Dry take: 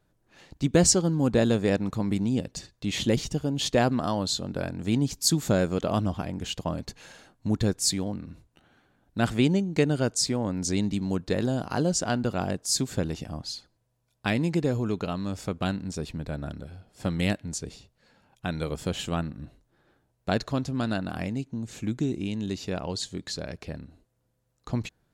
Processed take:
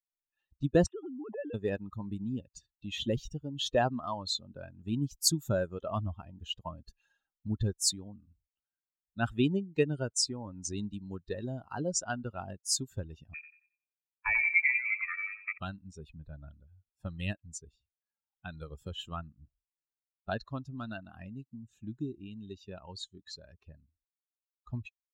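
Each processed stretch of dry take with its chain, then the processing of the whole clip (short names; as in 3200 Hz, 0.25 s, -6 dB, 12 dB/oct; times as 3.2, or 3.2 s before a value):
0.86–1.54 sine-wave speech + compressor 12:1, threshold -27 dBFS
13.34–15.58 inverted band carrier 2500 Hz + feedback echo 91 ms, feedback 52%, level -5.5 dB
whole clip: per-bin expansion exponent 2; dynamic EQ 200 Hz, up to -5 dB, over -44 dBFS, Q 1.4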